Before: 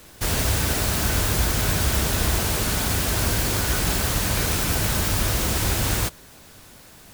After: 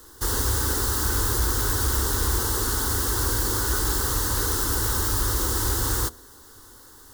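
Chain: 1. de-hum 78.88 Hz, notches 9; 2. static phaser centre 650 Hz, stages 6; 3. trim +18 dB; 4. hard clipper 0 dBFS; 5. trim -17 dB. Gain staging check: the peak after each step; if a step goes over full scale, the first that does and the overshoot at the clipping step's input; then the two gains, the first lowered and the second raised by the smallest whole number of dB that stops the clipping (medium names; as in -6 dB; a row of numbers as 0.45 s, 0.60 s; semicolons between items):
-9.0 dBFS, -10.0 dBFS, +8.0 dBFS, 0.0 dBFS, -17.0 dBFS; step 3, 8.0 dB; step 3 +10 dB, step 5 -9 dB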